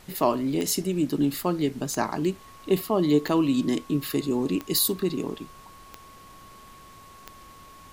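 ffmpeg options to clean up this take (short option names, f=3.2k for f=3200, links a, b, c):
-af "adeclick=t=4,bandreject=f=1.1k:w=30,afftdn=nr=22:nf=-48"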